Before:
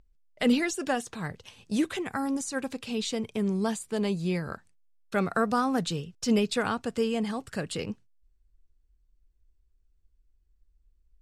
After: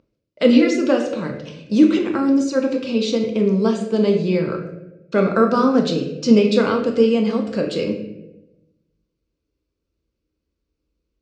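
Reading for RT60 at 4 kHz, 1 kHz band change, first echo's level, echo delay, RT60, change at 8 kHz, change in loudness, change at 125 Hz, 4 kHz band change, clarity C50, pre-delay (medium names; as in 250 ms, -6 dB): 0.65 s, +6.0 dB, no echo, no echo, 0.95 s, -0.5 dB, +11.5 dB, +8.5 dB, +6.5 dB, 6.5 dB, 4 ms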